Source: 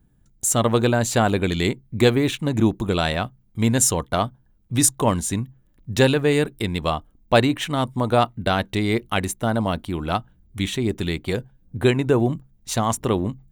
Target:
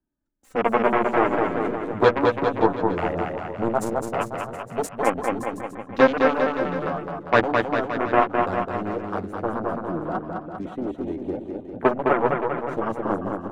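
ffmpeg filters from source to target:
-filter_complex "[0:a]aeval=exprs='0.75*(cos(1*acos(clip(val(0)/0.75,-1,1)))-cos(1*PI/2))+0.0596*(cos(3*acos(clip(val(0)/0.75,-1,1)))-cos(3*PI/2))+0.133*(cos(5*acos(clip(val(0)/0.75,-1,1)))-cos(5*PI/2))+0.299*(cos(7*acos(clip(val(0)/0.75,-1,1)))-cos(7*PI/2))+0.00473*(cos(8*acos(clip(val(0)/0.75,-1,1)))-cos(8*PI/2))':c=same,flanger=delay=3.2:depth=8.1:regen=19:speed=0.18:shape=sinusoidal,afwtdn=0.0355,acrossover=split=220 2200:gain=0.224 1 0.126[s0][s1][s2];[s0][s1][s2]amix=inputs=3:normalize=0,aecho=1:1:210|399|569.1|722.2|860:0.631|0.398|0.251|0.158|0.1,volume=1.58"

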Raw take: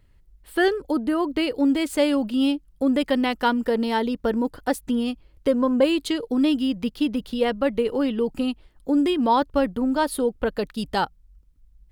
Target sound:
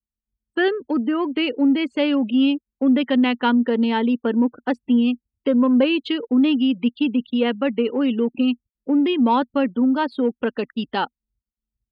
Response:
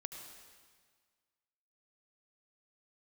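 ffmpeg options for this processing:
-filter_complex "[0:a]anlmdn=0.158,afftfilt=real='re*gte(hypot(re,im),0.0126)':imag='im*gte(hypot(re,im),0.0126)':win_size=1024:overlap=0.75,asplit=2[s0][s1];[s1]asoftclip=type=tanh:threshold=0.0596,volume=0.282[s2];[s0][s2]amix=inputs=2:normalize=0,highpass=240,equalizer=f=240:t=q:w=4:g=9,equalizer=f=650:t=q:w=4:g=-5,equalizer=f=2700:t=q:w=4:g=6,lowpass=f=3700:w=0.5412,lowpass=f=3700:w=1.3066"

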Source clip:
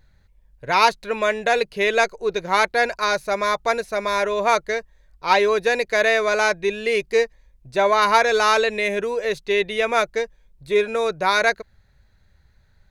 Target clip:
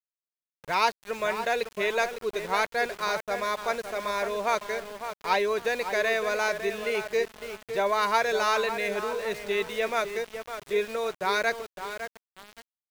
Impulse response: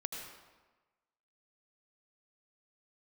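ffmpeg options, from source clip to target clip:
-filter_complex "[0:a]asplit=2[s0][s1];[s1]adelay=556,lowpass=f=2200:p=1,volume=0.376,asplit=2[s2][s3];[s3]adelay=556,lowpass=f=2200:p=1,volume=0.37,asplit=2[s4][s5];[s5]adelay=556,lowpass=f=2200:p=1,volume=0.37,asplit=2[s6][s7];[s7]adelay=556,lowpass=f=2200:p=1,volume=0.37[s8];[s0][s2][s4][s6][s8]amix=inputs=5:normalize=0,aeval=exprs='val(0)*gte(abs(val(0)),0.0316)':c=same,volume=0.398"

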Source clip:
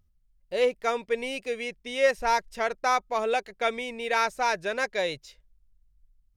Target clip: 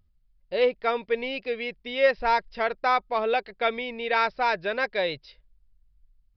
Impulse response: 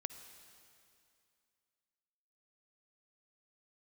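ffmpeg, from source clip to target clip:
-af "aresample=11025,aresample=44100,volume=1.19"

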